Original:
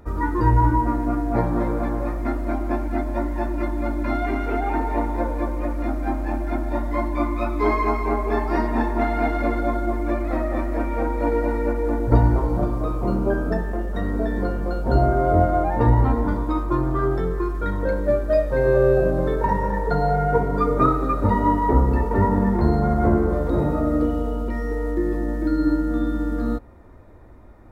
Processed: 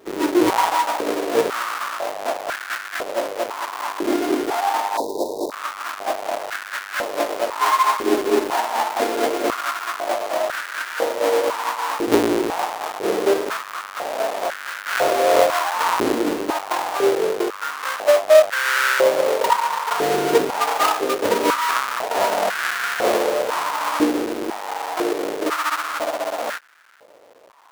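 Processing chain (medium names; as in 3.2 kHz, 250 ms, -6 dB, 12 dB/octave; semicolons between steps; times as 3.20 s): square wave that keeps the level; 4.97–5.52 s: Chebyshev band-stop 1–3.8 kHz, order 5; step-sequenced high-pass 2 Hz 350–1500 Hz; trim -4.5 dB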